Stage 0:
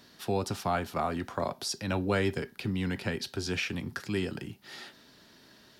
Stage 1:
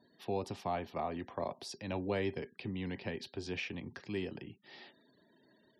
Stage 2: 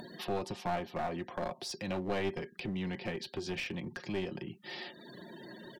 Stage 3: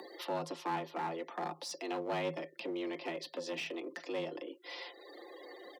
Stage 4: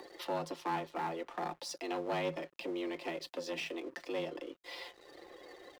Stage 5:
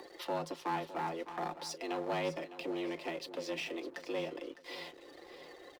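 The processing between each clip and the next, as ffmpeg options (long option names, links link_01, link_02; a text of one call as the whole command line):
ffmpeg -i in.wav -af "bass=frequency=250:gain=-5,treble=frequency=4000:gain=-10,afftfilt=real='re*gte(hypot(re,im),0.00178)':imag='im*gte(hypot(re,im),0.00178)':win_size=1024:overlap=0.75,equalizer=frequency=1400:width=3.6:gain=-14,volume=-4.5dB" out.wav
ffmpeg -i in.wav -af "aecho=1:1:5.6:0.5,acompressor=mode=upward:threshold=-36dB:ratio=2.5,aeval=exprs='clip(val(0),-1,0.0141)':channel_layout=same,volume=2dB" out.wav
ffmpeg -i in.wav -af "afreqshift=160,volume=-2dB" out.wav
ffmpeg -i in.wav -af "aeval=exprs='sgn(val(0))*max(abs(val(0))-0.00126,0)':channel_layout=same,volume=1dB" out.wav
ffmpeg -i in.wav -af "aecho=1:1:607|1214|1821:0.211|0.0719|0.0244" out.wav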